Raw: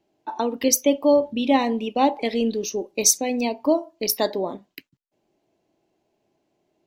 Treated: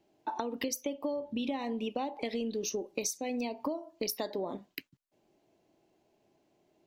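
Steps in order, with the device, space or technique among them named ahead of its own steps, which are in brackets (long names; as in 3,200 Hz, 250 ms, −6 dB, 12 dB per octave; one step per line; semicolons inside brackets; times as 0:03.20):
serial compression, peaks first (downward compressor 10 to 1, threshold −26 dBFS, peak gain reduction 14.5 dB; downward compressor 2 to 1, threshold −34 dBFS, peak gain reduction 6 dB)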